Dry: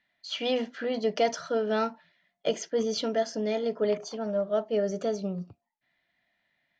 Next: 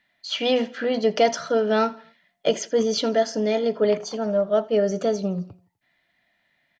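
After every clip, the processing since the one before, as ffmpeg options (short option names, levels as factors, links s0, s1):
-af "aecho=1:1:83|166|249:0.0841|0.0379|0.017,volume=2.11"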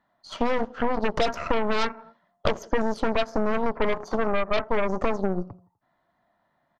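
-af "highshelf=f=1600:t=q:w=3:g=-12,aeval=exprs='0.447*(cos(1*acos(clip(val(0)/0.447,-1,1)))-cos(1*PI/2))+0.141*(cos(8*acos(clip(val(0)/0.447,-1,1)))-cos(8*PI/2))':c=same,acompressor=threshold=0.0794:ratio=6,volume=1.33"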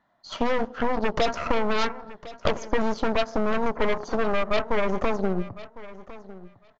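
-filter_complex "[0:a]asplit=2[s0][s1];[s1]aeval=exprs='0.0794*(abs(mod(val(0)/0.0794+3,4)-2)-1)':c=same,volume=0.282[s2];[s0][s2]amix=inputs=2:normalize=0,aecho=1:1:1055|2110:0.133|0.02,aresample=16000,aresample=44100"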